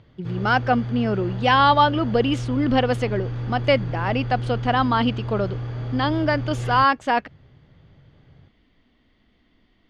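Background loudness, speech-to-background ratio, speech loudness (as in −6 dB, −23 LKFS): −29.5 LKFS, 8.0 dB, −21.5 LKFS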